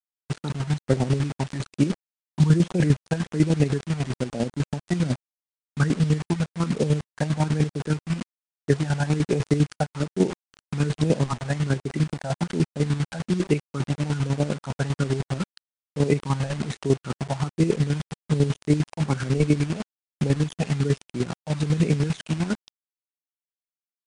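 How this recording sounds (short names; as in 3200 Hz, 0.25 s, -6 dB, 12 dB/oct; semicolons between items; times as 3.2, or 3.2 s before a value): phasing stages 12, 1.2 Hz, lowest notch 360–1400 Hz; a quantiser's noise floor 6-bit, dither none; chopped level 10 Hz, depth 65%, duty 35%; MP3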